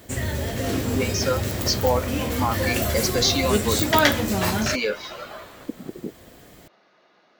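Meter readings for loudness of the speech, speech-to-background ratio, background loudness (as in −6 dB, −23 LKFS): −26.0 LKFS, −2.5 dB, −23.5 LKFS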